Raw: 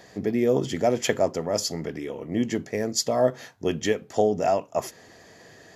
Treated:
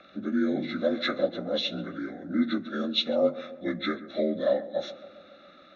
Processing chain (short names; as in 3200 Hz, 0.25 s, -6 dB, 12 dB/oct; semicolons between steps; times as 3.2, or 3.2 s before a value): inharmonic rescaling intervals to 83%; synth low-pass 3500 Hz, resonance Q 9.4; fixed phaser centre 630 Hz, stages 8; on a send: darkening echo 0.138 s, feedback 69%, low-pass 1500 Hz, level -15.5 dB; on the sum: vocal rider 2 s